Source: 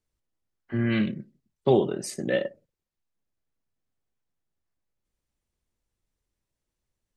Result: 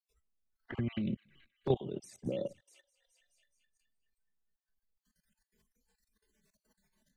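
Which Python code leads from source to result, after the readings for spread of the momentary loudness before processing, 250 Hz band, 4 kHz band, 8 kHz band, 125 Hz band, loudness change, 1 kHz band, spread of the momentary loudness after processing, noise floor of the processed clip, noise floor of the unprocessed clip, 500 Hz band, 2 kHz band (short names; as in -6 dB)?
11 LU, -10.5 dB, -12.5 dB, -17.0 dB, -7.5 dB, -11.0 dB, -12.5 dB, 9 LU, under -85 dBFS, under -85 dBFS, -11.0 dB, -17.0 dB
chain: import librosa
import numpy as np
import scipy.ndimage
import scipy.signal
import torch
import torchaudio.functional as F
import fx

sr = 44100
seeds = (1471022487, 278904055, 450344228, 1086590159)

y = fx.spec_dropout(x, sr, seeds[0], share_pct=27)
y = fx.echo_wet_highpass(y, sr, ms=212, feedback_pct=59, hz=2200.0, wet_db=-23.0)
y = fx.env_flanger(y, sr, rest_ms=4.6, full_db=-24.0)
y = fx.level_steps(y, sr, step_db=18)
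y = fx.low_shelf(y, sr, hz=120.0, db=8.0)
y = fx.noise_reduce_blind(y, sr, reduce_db=18)
y = fx.band_squash(y, sr, depth_pct=70)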